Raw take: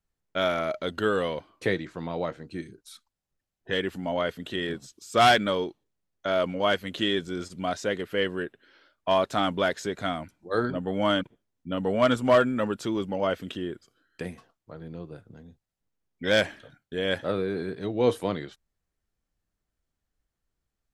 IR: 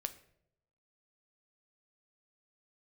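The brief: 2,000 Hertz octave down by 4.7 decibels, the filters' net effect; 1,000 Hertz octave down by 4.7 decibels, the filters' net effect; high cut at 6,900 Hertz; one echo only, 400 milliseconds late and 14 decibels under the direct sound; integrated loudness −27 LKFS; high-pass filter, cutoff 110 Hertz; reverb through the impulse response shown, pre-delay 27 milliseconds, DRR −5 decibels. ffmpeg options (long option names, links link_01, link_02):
-filter_complex "[0:a]highpass=110,lowpass=6900,equalizer=frequency=1000:width_type=o:gain=-6.5,equalizer=frequency=2000:width_type=o:gain=-3.5,aecho=1:1:400:0.2,asplit=2[link_01][link_02];[1:a]atrim=start_sample=2205,adelay=27[link_03];[link_02][link_03]afir=irnorm=-1:irlink=0,volume=6dB[link_04];[link_01][link_04]amix=inputs=2:normalize=0,volume=-3.5dB"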